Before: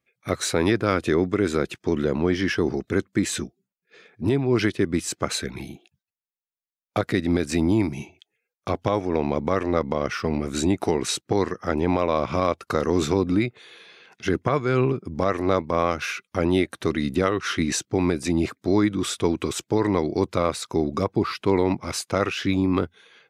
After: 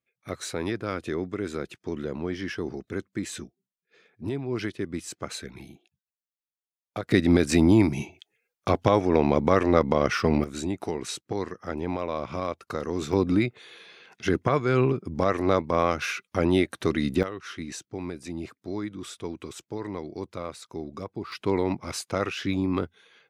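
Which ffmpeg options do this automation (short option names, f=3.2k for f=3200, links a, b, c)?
-af "asetnsamples=n=441:p=0,asendcmd='7.11 volume volume 2.5dB;10.44 volume volume -8dB;13.13 volume volume -1dB;17.23 volume volume -12.5dB;21.32 volume volume -4.5dB',volume=-9dB"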